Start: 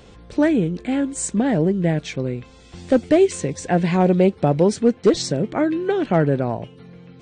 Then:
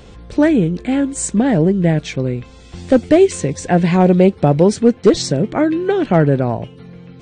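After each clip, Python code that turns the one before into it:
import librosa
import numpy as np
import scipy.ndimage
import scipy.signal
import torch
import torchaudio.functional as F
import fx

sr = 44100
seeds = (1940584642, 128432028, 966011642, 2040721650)

y = fx.low_shelf(x, sr, hz=110.0, db=5.5)
y = y * 10.0 ** (4.0 / 20.0)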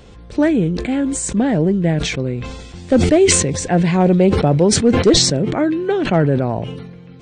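y = fx.sustainer(x, sr, db_per_s=41.0)
y = y * 10.0 ** (-2.5 / 20.0)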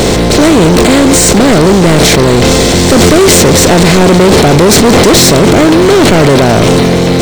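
y = fx.bin_compress(x, sr, power=0.4)
y = fx.leveller(y, sr, passes=5)
y = y * 10.0 ** (-5.5 / 20.0)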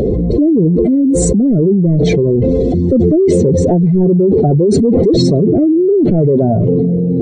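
y = fx.spec_expand(x, sr, power=3.2)
y = y * 10.0 ** (-5.0 / 20.0)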